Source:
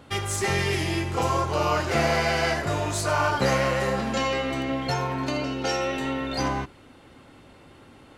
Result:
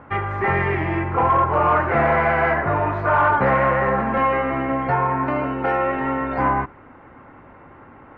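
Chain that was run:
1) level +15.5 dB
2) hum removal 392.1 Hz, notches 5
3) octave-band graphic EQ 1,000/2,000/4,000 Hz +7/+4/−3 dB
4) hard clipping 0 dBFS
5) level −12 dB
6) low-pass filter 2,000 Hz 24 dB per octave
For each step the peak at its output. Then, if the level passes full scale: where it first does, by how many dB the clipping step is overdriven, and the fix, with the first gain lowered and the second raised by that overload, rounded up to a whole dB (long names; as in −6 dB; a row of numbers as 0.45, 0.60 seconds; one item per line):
+6.0, +6.0, +9.0, 0.0, −12.0, −10.0 dBFS
step 1, 9.0 dB
step 1 +6.5 dB, step 5 −3 dB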